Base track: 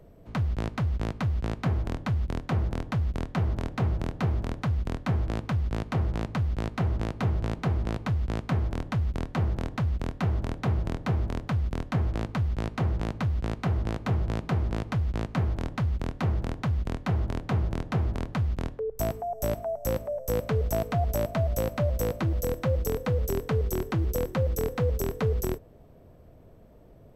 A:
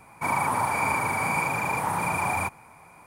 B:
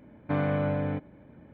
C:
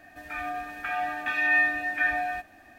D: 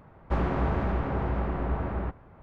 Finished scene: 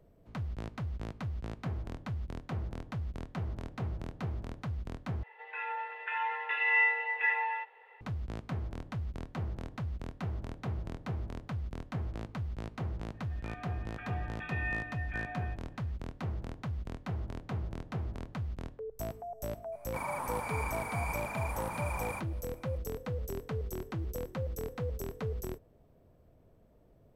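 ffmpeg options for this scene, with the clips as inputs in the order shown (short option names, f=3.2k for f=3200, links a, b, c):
-filter_complex "[3:a]asplit=2[a][b];[0:a]volume=-10dB[c];[a]highpass=f=260:t=q:w=0.5412,highpass=f=260:t=q:w=1.307,lowpass=f=3.2k:t=q:w=0.5176,lowpass=f=3.2k:t=q:w=0.7071,lowpass=f=3.2k:t=q:w=1.932,afreqshift=170[d];[b]aresample=8000,aresample=44100[e];[c]asplit=2[f][g];[f]atrim=end=5.234[h];[d]atrim=end=2.78,asetpts=PTS-STARTPTS,volume=-4dB[i];[g]atrim=start=8.006[j];[e]atrim=end=2.78,asetpts=PTS-STARTPTS,volume=-14.5dB,afade=t=in:d=0.004:c=hsin,afade=t=out:st=2.776:d=0.004:c=hsin,adelay=13140[k];[1:a]atrim=end=3.06,asetpts=PTS-STARTPTS,volume=-12.5dB,afade=t=in:d=0.004:c=hsin,afade=t=out:st=3.056:d=0.004:c=hsin,adelay=869652S[l];[h][i]acrossfade=d=0.004:c1=hsin:c2=hsin[m];[m][j]acrossfade=d=0.004:c1=hsin:c2=hsin[n];[n][k][l]amix=inputs=3:normalize=0"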